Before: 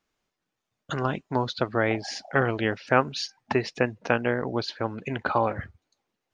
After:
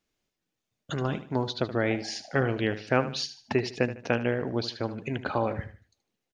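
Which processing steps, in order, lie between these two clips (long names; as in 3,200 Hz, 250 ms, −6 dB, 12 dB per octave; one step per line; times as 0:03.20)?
parametric band 1,100 Hz −7.5 dB 1.5 octaves
repeating echo 76 ms, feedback 35%, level −13 dB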